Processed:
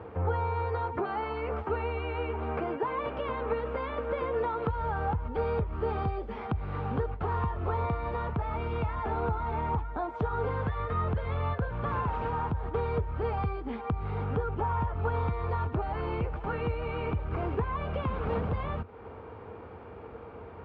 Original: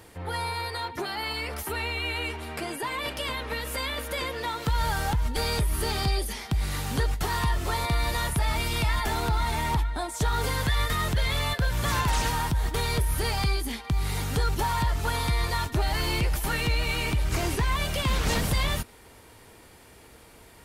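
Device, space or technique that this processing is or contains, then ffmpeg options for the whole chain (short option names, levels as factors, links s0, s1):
bass amplifier: -filter_complex "[0:a]acompressor=threshold=0.0141:ratio=3,highpass=60,equalizer=f=87:t=q:w=4:g=8,equalizer=f=210:t=q:w=4:g=3,equalizer=f=460:t=q:w=4:g=9,equalizer=f=800:t=q:w=4:g=4,equalizer=f=1200:t=q:w=4:g=5,equalizer=f=1900:t=q:w=4:g=-10,lowpass=f=2100:w=0.5412,lowpass=f=2100:w=1.3066,asettb=1/sr,asplit=3[s0][s1][s2];[s0]atrim=end=14.244[s3];[s1]atrim=start=14.24:end=14.94,asetpts=PTS-STARTPTS,afade=t=in:d=0.004:c=qsin,afade=t=out:st=0.696:d=0.004:c=qsin,equalizer=f=4200:w=6.3:g=-8[s4];[s2]atrim=start=14.936[s5];[s3][s4]acrossfade=d=0.004:c1=hsin:c2=qsin[s6];[s6][s5]acrossfade=d=0.004:c1=qsin:c2=hsin,volume=1.68"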